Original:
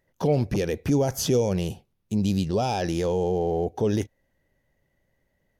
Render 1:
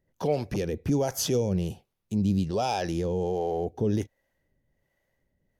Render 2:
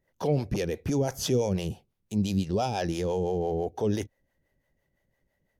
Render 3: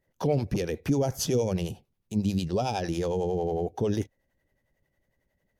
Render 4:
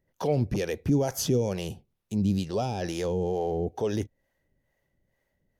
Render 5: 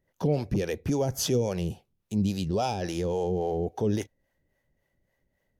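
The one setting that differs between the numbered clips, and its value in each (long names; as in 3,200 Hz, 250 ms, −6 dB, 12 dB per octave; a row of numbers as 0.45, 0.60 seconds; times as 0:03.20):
two-band tremolo in antiphase, speed: 1.3, 5.9, 11, 2.2, 3.6 Hertz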